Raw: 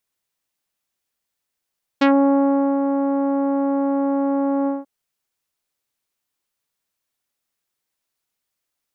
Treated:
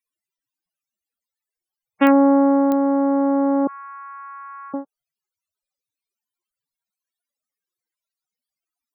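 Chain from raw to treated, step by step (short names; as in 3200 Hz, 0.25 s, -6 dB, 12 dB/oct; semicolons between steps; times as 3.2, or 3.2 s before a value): 3.67–4.74 Chebyshev band-pass 1000–2700 Hz, order 5; loudest bins only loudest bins 32; pops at 2.07/2.72, -13 dBFS; gain +2 dB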